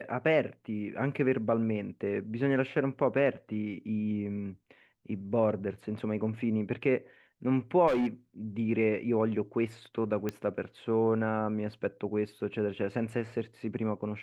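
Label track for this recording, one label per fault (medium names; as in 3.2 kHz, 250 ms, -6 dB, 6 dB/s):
7.870000	8.070000	clipped -24.5 dBFS
10.290000	10.290000	pop -19 dBFS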